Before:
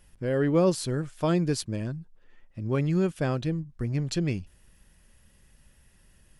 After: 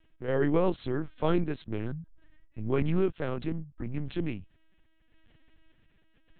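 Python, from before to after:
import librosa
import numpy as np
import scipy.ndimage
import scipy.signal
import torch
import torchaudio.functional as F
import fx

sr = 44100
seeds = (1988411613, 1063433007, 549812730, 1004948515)

y = fx.tremolo_random(x, sr, seeds[0], hz=3.5, depth_pct=55)
y = fx.lpc_vocoder(y, sr, seeds[1], excitation='pitch_kept', order=8)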